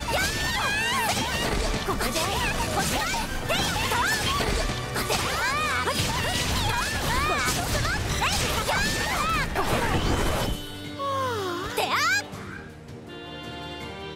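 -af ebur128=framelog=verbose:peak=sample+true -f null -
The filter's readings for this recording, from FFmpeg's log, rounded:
Integrated loudness:
  I:         -25.0 LUFS
  Threshold: -35.5 LUFS
Loudness range:
  LRA:         3.0 LU
  Threshold: -45.3 LUFS
  LRA low:   -27.5 LUFS
  LRA high:  -24.5 LUFS
Sample peak:
  Peak:      -11.5 dBFS
True peak:
  Peak:      -11.5 dBFS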